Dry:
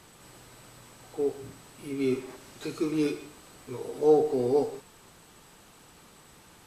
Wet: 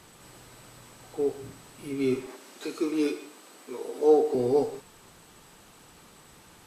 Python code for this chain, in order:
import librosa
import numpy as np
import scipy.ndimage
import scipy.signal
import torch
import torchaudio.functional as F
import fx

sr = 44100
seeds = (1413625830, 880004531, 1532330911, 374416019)

y = fx.highpass(x, sr, hz=230.0, slope=24, at=(2.27, 4.35))
y = y * 10.0 ** (1.0 / 20.0)